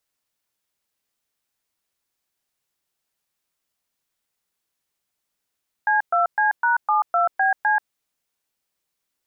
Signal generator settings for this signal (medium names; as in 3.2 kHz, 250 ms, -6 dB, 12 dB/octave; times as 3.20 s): DTMF "C2C#72BC", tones 135 ms, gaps 119 ms, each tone -18.5 dBFS